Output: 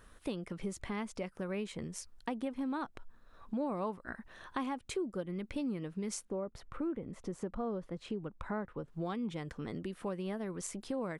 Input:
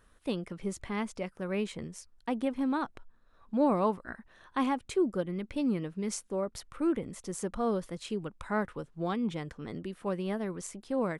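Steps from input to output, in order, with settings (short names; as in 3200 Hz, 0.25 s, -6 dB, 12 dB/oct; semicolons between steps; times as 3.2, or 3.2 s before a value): 6.25–8.88 LPF 1200 Hz 6 dB/oct; compressor 3:1, threshold -43 dBFS, peak gain reduction 16 dB; gain +5 dB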